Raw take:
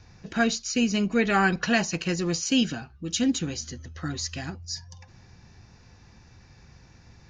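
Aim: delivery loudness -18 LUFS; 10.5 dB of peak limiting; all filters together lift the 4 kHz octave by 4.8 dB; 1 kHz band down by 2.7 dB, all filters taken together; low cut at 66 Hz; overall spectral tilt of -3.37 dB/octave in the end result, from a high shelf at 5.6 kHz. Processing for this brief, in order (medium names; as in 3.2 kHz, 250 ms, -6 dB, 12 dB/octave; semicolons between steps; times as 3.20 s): high-pass 66 Hz; peaking EQ 1 kHz -4.5 dB; peaking EQ 4 kHz +8.5 dB; treble shelf 5.6 kHz -4 dB; trim +12 dB; peak limiter -8 dBFS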